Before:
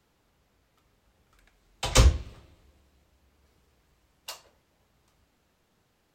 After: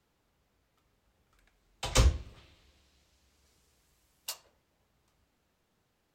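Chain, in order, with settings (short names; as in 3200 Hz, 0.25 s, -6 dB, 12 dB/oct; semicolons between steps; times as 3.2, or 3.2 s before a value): 2.36–4.32 bell 3000 Hz -> 13000 Hz +11 dB 2.2 oct; gain -5.5 dB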